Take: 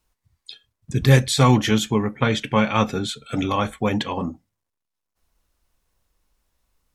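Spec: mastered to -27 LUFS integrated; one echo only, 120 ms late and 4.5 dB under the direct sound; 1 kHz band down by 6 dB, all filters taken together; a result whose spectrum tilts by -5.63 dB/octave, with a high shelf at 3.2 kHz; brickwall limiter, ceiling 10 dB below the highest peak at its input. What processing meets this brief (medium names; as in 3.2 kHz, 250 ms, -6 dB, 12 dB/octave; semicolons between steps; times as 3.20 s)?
peaking EQ 1 kHz -6.5 dB; treble shelf 3.2 kHz -7 dB; peak limiter -12.5 dBFS; delay 120 ms -4.5 dB; trim -3 dB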